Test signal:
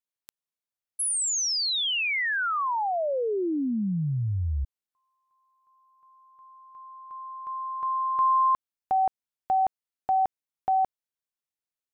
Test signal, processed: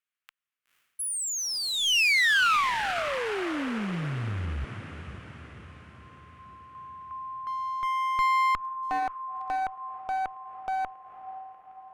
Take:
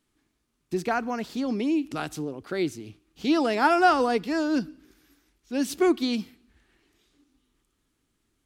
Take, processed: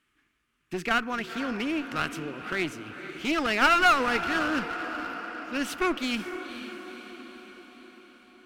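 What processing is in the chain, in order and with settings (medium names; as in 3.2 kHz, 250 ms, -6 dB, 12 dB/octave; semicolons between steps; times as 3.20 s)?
high-order bell 1.9 kHz +12 dB; on a send: echo that smears into a reverb 498 ms, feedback 58%, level -12 dB; on the sum: one-sided clip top -26.5 dBFS; trim -3.5 dB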